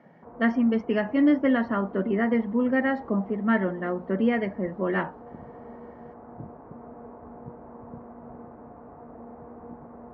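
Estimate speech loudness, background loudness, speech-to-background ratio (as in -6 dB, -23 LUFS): -25.0 LUFS, -45.0 LUFS, 20.0 dB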